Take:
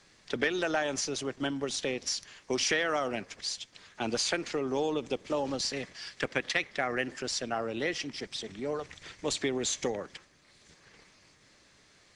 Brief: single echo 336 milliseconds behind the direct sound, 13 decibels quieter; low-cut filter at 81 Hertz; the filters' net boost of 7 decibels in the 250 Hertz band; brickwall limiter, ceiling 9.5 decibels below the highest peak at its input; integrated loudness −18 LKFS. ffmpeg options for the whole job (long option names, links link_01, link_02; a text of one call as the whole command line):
ffmpeg -i in.wav -af "highpass=81,equalizer=frequency=250:width_type=o:gain=8.5,alimiter=limit=-21dB:level=0:latency=1,aecho=1:1:336:0.224,volume=13.5dB" out.wav